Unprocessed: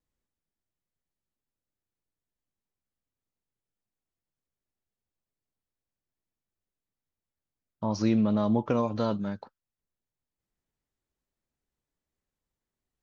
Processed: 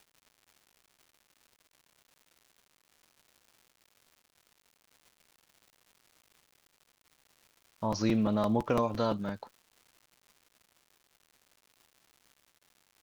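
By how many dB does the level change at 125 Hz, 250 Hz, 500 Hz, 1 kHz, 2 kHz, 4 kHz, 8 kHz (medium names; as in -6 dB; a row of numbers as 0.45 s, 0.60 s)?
-3.5 dB, -4.0 dB, -1.0 dB, +0.5 dB, +1.5 dB, +1.5 dB, no reading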